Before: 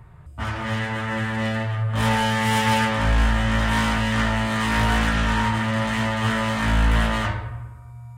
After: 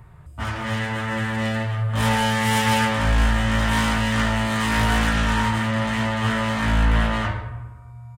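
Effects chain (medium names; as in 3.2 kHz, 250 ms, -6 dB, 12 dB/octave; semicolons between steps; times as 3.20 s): treble shelf 5.8 kHz +4.5 dB, from 5.68 s -2 dB, from 6.84 s -7.5 dB; delay 145 ms -21.5 dB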